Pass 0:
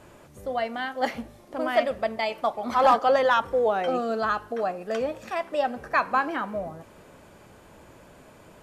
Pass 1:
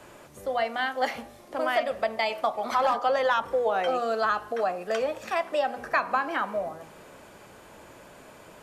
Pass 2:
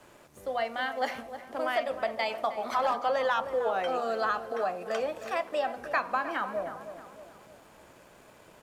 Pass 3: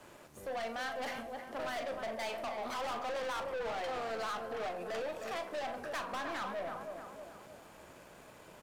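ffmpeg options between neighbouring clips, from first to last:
ffmpeg -i in.wav -filter_complex "[0:a]acrossover=split=190|380[link_01][link_02][link_03];[link_01]acompressor=threshold=-48dB:ratio=4[link_04];[link_02]acompressor=threshold=-45dB:ratio=4[link_05];[link_03]acompressor=threshold=-25dB:ratio=4[link_06];[link_04][link_05][link_06]amix=inputs=3:normalize=0,lowshelf=frequency=250:gain=-8.5,bandreject=frequency=80.75:width_type=h:width=4,bandreject=frequency=161.5:width_type=h:width=4,bandreject=frequency=242.25:width_type=h:width=4,bandreject=frequency=323:width_type=h:width=4,bandreject=frequency=403.75:width_type=h:width=4,bandreject=frequency=484.5:width_type=h:width=4,bandreject=frequency=565.25:width_type=h:width=4,bandreject=frequency=646:width_type=h:width=4,bandreject=frequency=726.75:width_type=h:width=4,bandreject=frequency=807.5:width_type=h:width=4,bandreject=frequency=888.25:width_type=h:width=4,bandreject=frequency=969:width_type=h:width=4,bandreject=frequency=1049.75:width_type=h:width=4,bandreject=frequency=1130.5:width_type=h:width=4,bandreject=frequency=1211.25:width_type=h:width=4,volume=4dB" out.wav
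ffmpeg -i in.wav -filter_complex "[0:a]aeval=exprs='sgn(val(0))*max(abs(val(0))-0.00133,0)':channel_layout=same,asplit=2[link_01][link_02];[link_02]adelay=312,lowpass=frequency=1600:poles=1,volume=-10.5dB,asplit=2[link_03][link_04];[link_04]adelay=312,lowpass=frequency=1600:poles=1,volume=0.51,asplit=2[link_05][link_06];[link_06]adelay=312,lowpass=frequency=1600:poles=1,volume=0.51,asplit=2[link_07][link_08];[link_08]adelay=312,lowpass=frequency=1600:poles=1,volume=0.51,asplit=2[link_09][link_10];[link_10]adelay=312,lowpass=frequency=1600:poles=1,volume=0.51,asplit=2[link_11][link_12];[link_12]adelay=312,lowpass=frequency=1600:poles=1,volume=0.51[link_13];[link_01][link_03][link_05][link_07][link_09][link_11][link_13]amix=inputs=7:normalize=0,volume=-3.5dB" out.wav
ffmpeg -i in.wav -filter_complex "[0:a]aeval=exprs='(tanh(63.1*val(0)+0.15)-tanh(0.15))/63.1':channel_layout=same,asplit=2[link_01][link_02];[link_02]adelay=40,volume=-11dB[link_03];[link_01][link_03]amix=inputs=2:normalize=0" out.wav

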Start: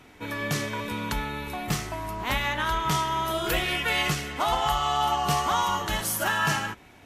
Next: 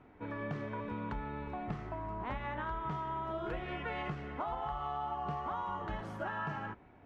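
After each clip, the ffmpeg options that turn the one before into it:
ffmpeg -i in.wav -af "lowpass=1300,acompressor=threshold=-29dB:ratio=6,volume=-5.5dB" out.wav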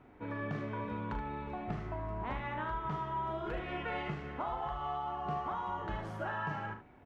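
ffmpeg -i in.wav -af "aecho=1:1:39|75:0.376|0.335" out.wav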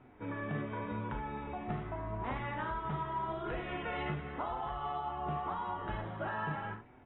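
ffmpeg -i in.wav -af "flanger=delay=7.8:depth=6:regen=65:speed=0.86:shape=sinusoidal,volume=4dB" -ar 22050 -c:a aac -b:a 16k out.aac

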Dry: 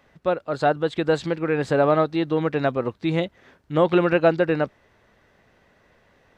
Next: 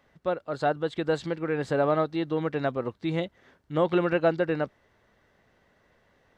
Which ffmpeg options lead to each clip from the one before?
ffmpeg -i in.wav -af "bandreject=frequency=2500:width=17,volume=-5.5dB" out.wav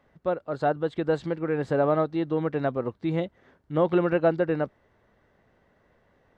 ffmpeg -i in.wav -af "highshelf=frequency=2100:gain=-10,volume=2dB" out.wav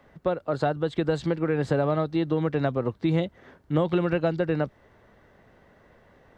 ffmpeg -i in.wav -filter_complex "[0:a]acrossover=split=150|3000[link_01][link_02][link_03];[link_02]acompressor=threshold=-30dB:ratio=6[link_04];[link_01][link_04][link_03]amix=inputs=3:normalize=0,volume=7.5dB" out.wav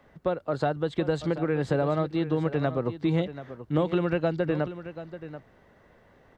ffmpeg -i in.wav -af "aecho=1:1:734:0.224,volume=-1.5dB" out.wav

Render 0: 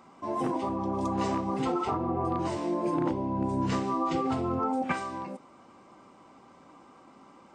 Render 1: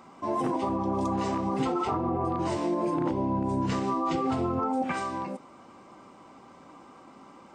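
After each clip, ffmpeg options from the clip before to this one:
ffmpeg -i in.wav -af "alimiter=limit=-23dB:level=0:latency=1:release=72,volume=3.5dB" out.wav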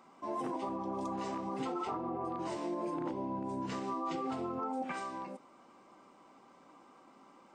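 ffmpeg -i in.wav -af "equalizer=frequency=80:width=0.97:gain=-14,volume=-8dB" out.wav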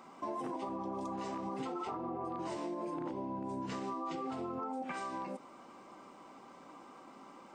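ffmpeg -i in.wav -af "acompressor=threshold=-42dB:ratio=6,volume=5.5dB" out.wav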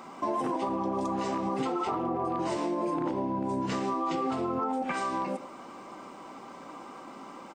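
ffmpeg -i in.wav -filter_complex "[0:a]asplit=2[link_01][link_02];[link_02]adelay=110,highpass=300,lowpass=3400,asoftclip=type=hard:threshold=-37.5dB,volume=-13dB[link_03];[link_01][link_03]amix=inputs=2:normalize=0,volume=9dB" out.wav

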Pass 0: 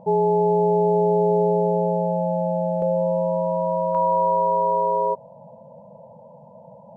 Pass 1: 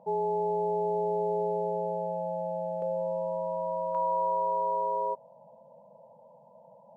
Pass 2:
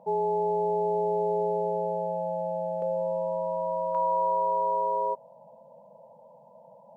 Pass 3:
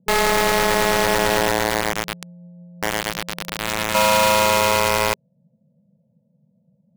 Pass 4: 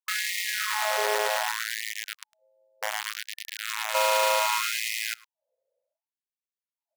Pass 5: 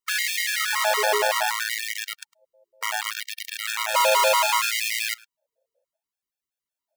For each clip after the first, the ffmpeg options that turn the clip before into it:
ffmpeg -i in.wav -af "highpass=frequency=470:poles=1,volume=-7dB" out.wav
ffmpeg -i in.wav -af "lowshelf=frequency=69:gain=-8.5,volume=2.5dB" out.wav
ffmpeg -i in.wav -filter_complex "[0:a]acrossover=split=240[link_01][link_02];[link_01]alimiter=level_in=22.5dB:limit=-24dB:level=0:latency=1,volume=-22.5dB[link_03];[link_02]acrusher=bits=3:mix=0:aa=0.000001[link_04];[link_03][link_04]amix=inputs=2:normalize=0,volume=8dB" out.wav
ffmpeg -i in.wav -filter_complex "[0:a]asplit=2[link_01][link_02];[link_02]adelay=105,volume=-23dB,highshelf=frequency=4000:gain=-2.36[link_03];[link_01][link_03]amix=inputs=2:normalize=0,afftfilt=real='re*gte(b*sr/1024,370*pow(1800/370,0.5+0.5*sin(2*PI*0.66*pts/sr)))':imag='im*gte(b*sr/1024,370*pow(1800/370,0.5+0.5*sin(2*PI*0.66*pts/sr)))':win_size=1024:overlap=0.75,volume=-6.5dB" out.wav
ffmpeg -i in.wav -af "afftfilt=real='re*gt(sin(2*PI*5.3*pts/sr)*(1-2*mod(floor(b*sr/1024/460),2)),0)':imag='im*gt(sin(2*PI*5.3*pts/sr)*(1-2*mod(floor(b*sr/1024/460),2)),0)':win_size=1024:overlap=0.75,volume=7.5dB" out.wav

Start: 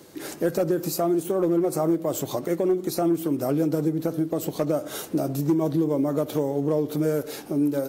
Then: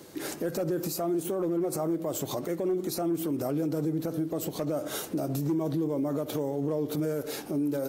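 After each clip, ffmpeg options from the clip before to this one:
ffmpeg -i in.wav -af "alimiter=limit=-22dB:level=0:latency=1:release=78" out.wav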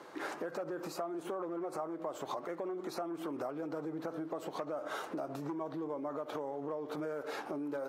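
ffmpeg -i in.wav -af "bandpass=frequency=1100:width_type=q:width=1.5:csg=0,acompressor=threshold=-43dB:ratio=6,volume=7.5dB" out.wav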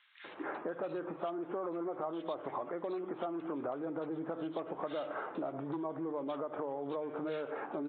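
ffmpeg -i in.wav -filter_complex "[0:a]bandreject=frequency=50:width_type=h:width=6,bandreject=frequency=100:width_type=h:width=6,bandreject=frequency=150:width_type=h:width=6,acrossover=split=2100[link_01][link_02];[link_01]adelay=240[link_03];[link_03][link_02]amix=inputs=2:normalize=0,aresample=8000,aresample=44100,volume=1dB" out.wav

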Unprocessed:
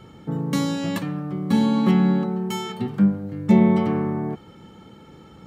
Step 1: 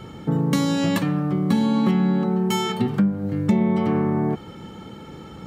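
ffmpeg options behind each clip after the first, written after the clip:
ffmpeg -i in.wav -af "acompressor=threshold=-24dB:ratio=5,volume=7dB" out.wav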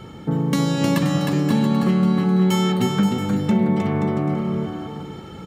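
ffmpeg -i in.wav -af "aecho=1:1:310|527|678.9|785.2|859.7:0.631|0.398|0.251|0.158|0.1" out.wav

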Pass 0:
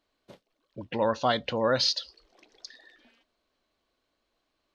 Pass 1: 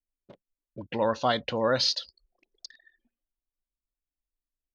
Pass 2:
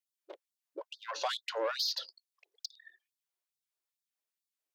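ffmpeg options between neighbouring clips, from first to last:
ffmpeg -i in.wav -af "anlmdn=0.00631" out.wav
ffmpeg -i in.wav -filter_complex "[0:a]acrossover=split=1800|3800[link_01][link_02][link_03];[link_01]acompressor=threshold=-31dB:ratio=4[link_04];[link_02]acompressor=threshold=-47dB:ratio=4[link_05];[link_03]acompressor=threshold=-36dB:ratio=4[link_06];[link_04][link_05][link_06]amix=inputs=3:normalize=0,asoftclip=type=tanh:threshold=-29dB,afftfilt=real='re*gte(b*sr/1024,290*pow(3500/290,0.5+0.5*sin(2*PI*2.3*pts/sr)))':imag='im*gte(b*sr/1024,290*pow(3500/290,0.5+0.5*sin(2*PI*2.3*pts/sr)))':win_size=1024:overlap=0.75,volume=4dB" out.wav

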